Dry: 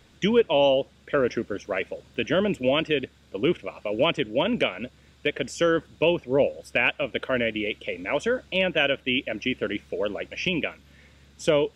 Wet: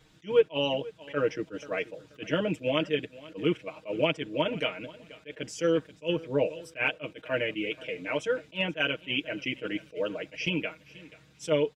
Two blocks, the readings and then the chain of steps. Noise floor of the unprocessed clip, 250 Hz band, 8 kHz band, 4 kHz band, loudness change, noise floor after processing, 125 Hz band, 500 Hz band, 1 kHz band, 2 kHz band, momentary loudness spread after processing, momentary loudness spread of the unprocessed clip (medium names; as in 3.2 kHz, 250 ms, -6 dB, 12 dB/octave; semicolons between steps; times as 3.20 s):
-57 dBFS, -5.0 dB, -4.5 dB, -5.0 dB, -5.0 dB, -59 dBFS, -3.5 dB, -5.0 dB, -6.5 dB, -5.5 dB, 12 LU, 8 LU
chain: comb 6.4 ms, depth 91%; on a send: feedback delay 484 ms, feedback 27%, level -20 dB; on the sum: attacks held to a fixed rise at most 330 dB/s; trim -6.5 dB